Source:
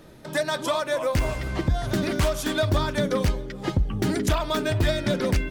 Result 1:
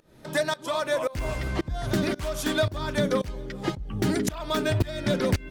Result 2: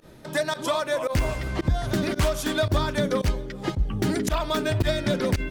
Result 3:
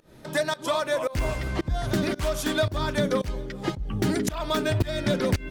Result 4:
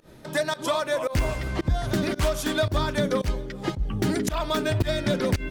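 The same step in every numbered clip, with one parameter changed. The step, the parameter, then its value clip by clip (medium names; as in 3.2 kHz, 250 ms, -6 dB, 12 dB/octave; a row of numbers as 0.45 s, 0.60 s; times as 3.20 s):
volume shaper, release: 390 ms, 70 ms, 243 ms, 133 ms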